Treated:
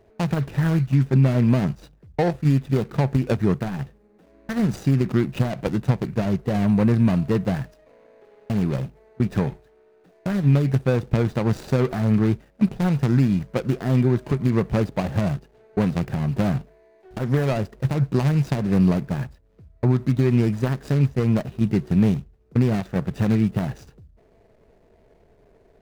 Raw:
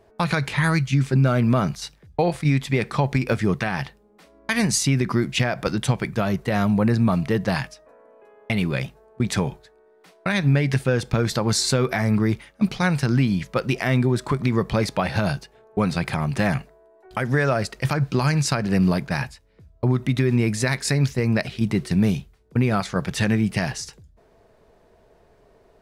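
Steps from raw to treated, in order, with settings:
running median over 41 samples
level +1.5 dB

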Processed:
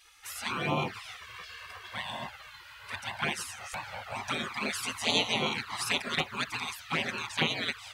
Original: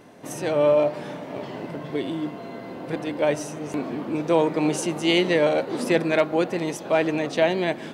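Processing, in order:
gate on every frequency bin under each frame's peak −20 dB weak
flanger swept by the level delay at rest 2.5 ms, full sweep at −29 dBFS
level +6.5 dB

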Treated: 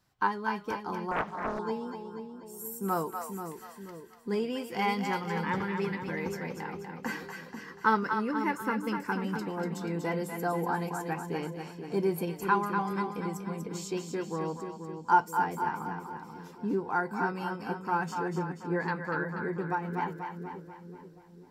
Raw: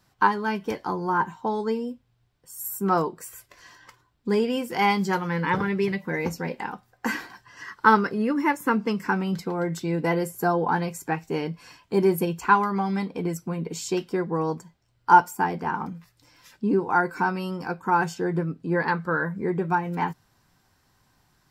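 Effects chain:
echo with a time of its own for lows and highs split 570 Hz, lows 483 ms, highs 242 ms, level −6 dB
0:01.11–0:01.59: highs frequency-modulated by the lows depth 0.92 ms
level −8 dB

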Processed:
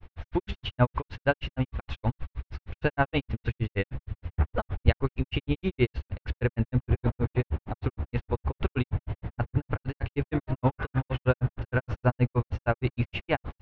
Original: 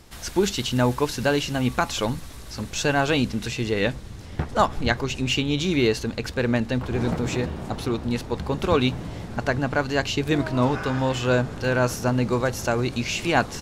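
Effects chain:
low-pass filter 2,800 Hz 24 dB per octave
low shelf with overshoot 130 Hz +8.5 dB, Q 1.5
granular cloud 90 ms, grains 6.4 per second, spray 14 ms, pitch spread up and down by 0 semitones

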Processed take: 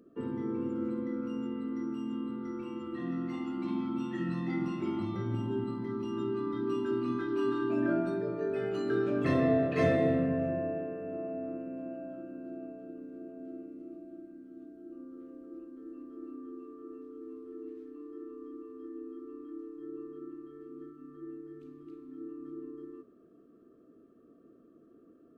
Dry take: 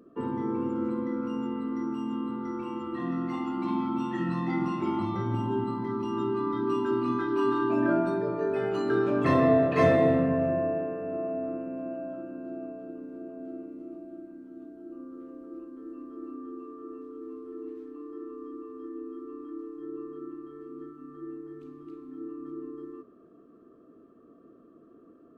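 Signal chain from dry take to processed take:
parametric band 950 Hz −10.5 dB 0.65 octaves
level −3.5 dB

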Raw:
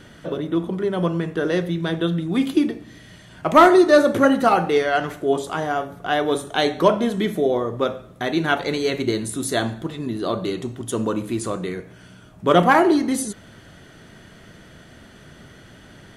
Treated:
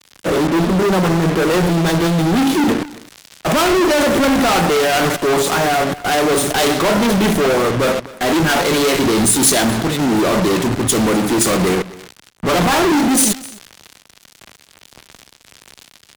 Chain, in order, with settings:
Chebyshev band-pass filter 160–9,700 Hz, order 2
output level in coarse steps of 10 dB
fuzz pedal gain 51 dB, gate −43 dBFS
on a send: single-tap delay 259 ms −15.5 dB
on the sum: multiband upward and downward expander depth 70%

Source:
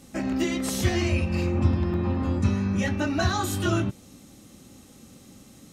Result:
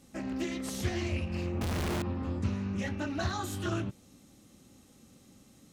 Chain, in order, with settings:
0:01.61–0:02.02: sign of each sample alone
highs frequency-modulated by the lows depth 0.36 ms
level −8.5 dB

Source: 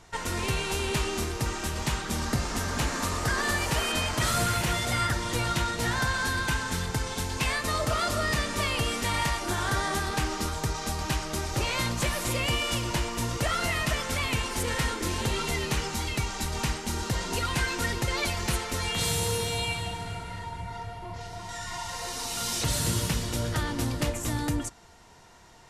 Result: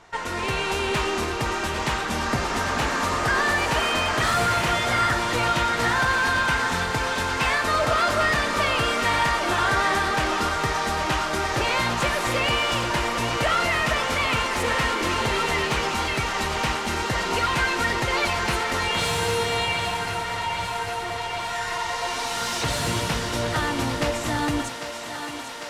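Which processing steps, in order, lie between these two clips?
automatic gain control gain up to 4 dB
mid-hump overdrive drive 13 dB, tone 1,700 Hz, clips at −10.5 dBFS
on a send: feedback echo with a high-pass in the loop 799 ms, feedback 83%, high-pass 290 Hz, level −9.5 dB

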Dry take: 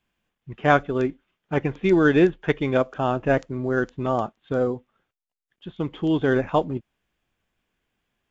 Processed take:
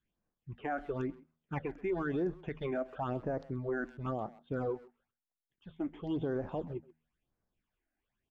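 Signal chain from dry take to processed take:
all-pass phaser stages 8, 0.98 Hz, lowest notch 130–3,100 Hz
dynamic equaliser 790 Hz, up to +4 dB, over −33 dBFS, Q 0.75
brickwall limiter −19 dBFS, peak gain reduction 15 dB
high-shelf EQ 2,900 Hz −8.5 dB
hum removal 79.37 Hz, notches 3
far-end echo of a speakerphone 130 ms, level −18 dB
level −7 dB

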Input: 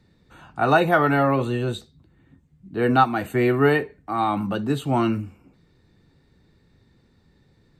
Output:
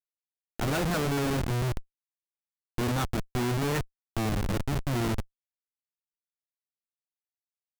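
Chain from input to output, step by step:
drawn EQ curve 200 Hz 0 dB, 780 Hz −9 dB, 2,900 Hz +3 dB
comparator with hysteresis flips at −23 dBFS

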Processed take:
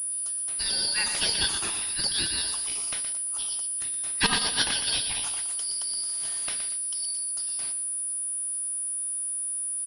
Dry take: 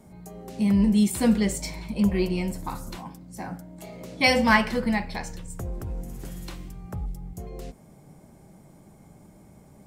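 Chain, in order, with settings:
band-splitting scrambler in four parts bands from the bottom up 4321
0:04.26–0:04.71: compressor whose output falls as the input rises −23 dBFS, ratio −0.5
0:06.69–0:07.19: Chebyshev high-pass filter 2,100 Hz, order 5
gate on every frequency bin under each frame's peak −15 dB weak
high-shelf EQ 3,700 Hz +3 dB
repeating echo 119 ms, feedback 39%, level −8.5 dB
bit reduction 11 bits
noise gate −48 dBFS, range −6 dB
switching amplifier with a slow clock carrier 9,800 Hz
level +8.5 dB

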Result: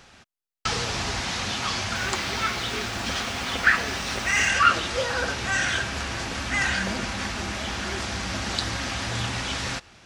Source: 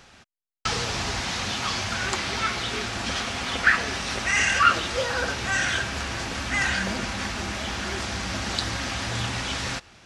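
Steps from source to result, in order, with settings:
0:01.95–0:04.49: bit-depth reduction 8 bits, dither none

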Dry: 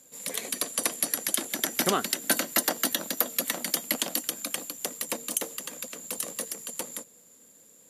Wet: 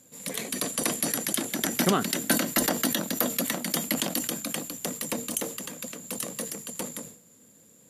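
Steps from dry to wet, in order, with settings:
bass and treble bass +11 dB, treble −2 dB
mains-hum notches 50/100/150 Hz
level that may fall only so fast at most 100 dB per second

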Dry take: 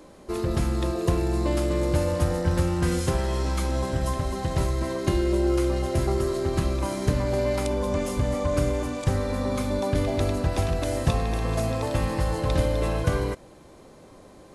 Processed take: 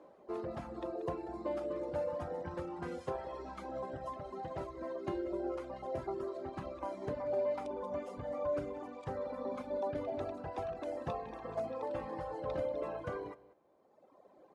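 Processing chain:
resonant band-pass 670 Hz, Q 1.1
single-tap delay 187 ms −12 dB
reverb reduction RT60 1.9 s
level −5 dB

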